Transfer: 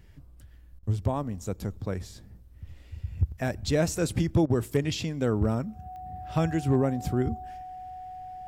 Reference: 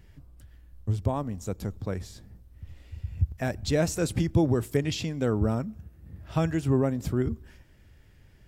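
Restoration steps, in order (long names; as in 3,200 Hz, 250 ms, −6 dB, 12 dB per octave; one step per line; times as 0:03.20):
clipped peaks rebuilt −15 dBFS
click removal
notch filter 740 Hz, Q 30
repair the gap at 0:00.79/0:04.46, 39 ms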